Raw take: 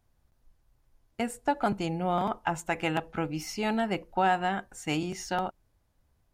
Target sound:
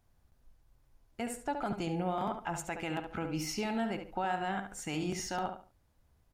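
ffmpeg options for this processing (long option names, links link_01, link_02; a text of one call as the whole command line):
ffmpeg -i in.wav -filter_complex "[0:a]alimiter=level_in=0.5dB:limit=-24dB:level=0:latency=1:release=133,volume=-0.5dB,asplit=2[link_01][link_02];[link_02]adelay=71,lowpass=frequency=4700:poles=1,volume=-7.5dB,asplit=2[link_03][link_04];[link_04]adelay=71,lowpass=frequency=4700:poles=1,volume=0.27,asplit=2[link_05][link_06];[link_06]adelay=71,lowpass=frequency=4700:poles=1,volume=0.27[link_07];[link_01][link_03][link_05][link_07]amix=inputs=4:normalize=0" out.wav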